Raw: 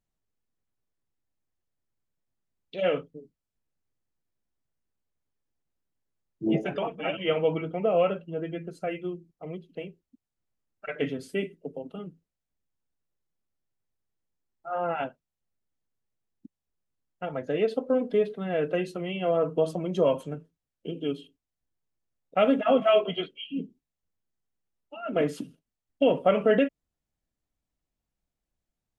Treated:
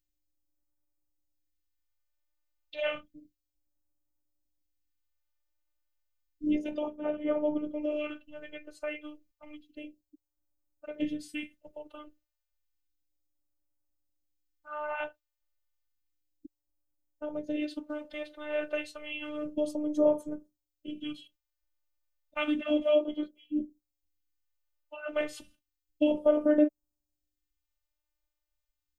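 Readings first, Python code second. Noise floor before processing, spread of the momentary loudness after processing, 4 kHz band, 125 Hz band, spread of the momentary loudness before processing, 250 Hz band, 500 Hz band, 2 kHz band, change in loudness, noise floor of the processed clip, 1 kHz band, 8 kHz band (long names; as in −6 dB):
below −85 dBFS, 21 LU, −6.0 dB, −21.5 dB, 18 LU, −1.0 dB, −6.0 dB, −3.5 dB, −4.5 dB, below −85 dBFS, −11.0 dB, can't be measured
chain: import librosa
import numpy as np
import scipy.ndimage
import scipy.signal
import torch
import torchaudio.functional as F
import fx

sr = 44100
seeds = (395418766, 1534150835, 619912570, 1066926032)

y = fx.robotise(x, sr, hz=301.0)
y = fx.phaser_stages(y, sr, stages=2, low_hz=190.0, high_hz=2700.0, hz=0.31, feedback_pct=25)
y = y * 10.0 ** (1.5 / 20.0)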